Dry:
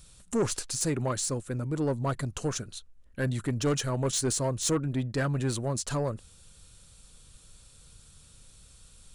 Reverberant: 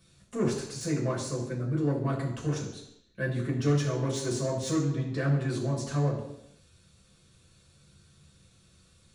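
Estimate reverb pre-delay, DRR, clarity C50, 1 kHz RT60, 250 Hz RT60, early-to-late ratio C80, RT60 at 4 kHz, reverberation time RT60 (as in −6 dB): 3 ms, −3.5 dB, 6.0 dB, 0.80 s, 0.80 s, 8.5 dB, 0.85 s, 0.80 s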